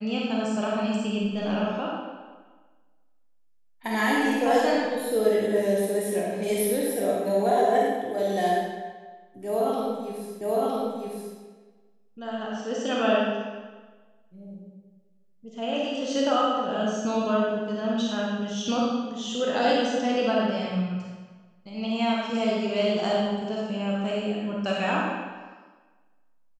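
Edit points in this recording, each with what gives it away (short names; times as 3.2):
10.41 repeat of the last 0.96 s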